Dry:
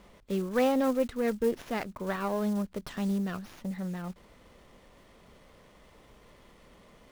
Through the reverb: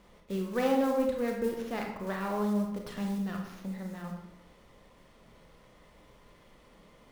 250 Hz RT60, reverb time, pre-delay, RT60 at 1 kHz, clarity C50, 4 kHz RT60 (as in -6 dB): 0.75 s, 0.85 s, 26 ms, 0.85 s, 3.5 dB, 0.55 s